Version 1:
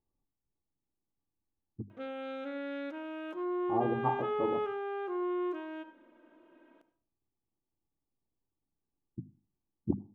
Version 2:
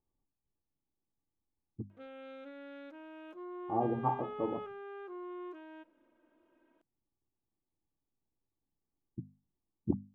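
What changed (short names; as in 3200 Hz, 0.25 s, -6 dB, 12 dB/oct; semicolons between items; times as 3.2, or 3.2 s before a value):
background -7.5 dB; reverb: off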